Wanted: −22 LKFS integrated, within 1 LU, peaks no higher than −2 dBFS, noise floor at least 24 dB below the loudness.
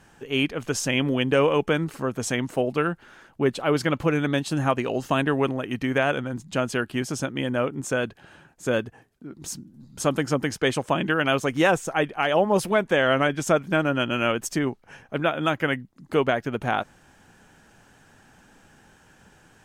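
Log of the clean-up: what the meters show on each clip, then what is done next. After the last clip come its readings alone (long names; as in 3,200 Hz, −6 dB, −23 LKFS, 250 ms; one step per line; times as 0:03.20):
integrated loudness −24.5 LKFS; sample peak −9.0 dBFS; target loudness −22.0 LKFS
→ level +2.5 dB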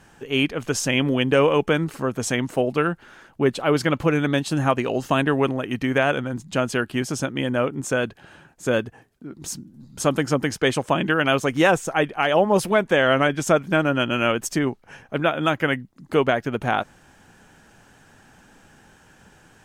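integrated loudness −22.0 LKFS; sample peak −6.5 dBFS; background noise floor −54 dBFS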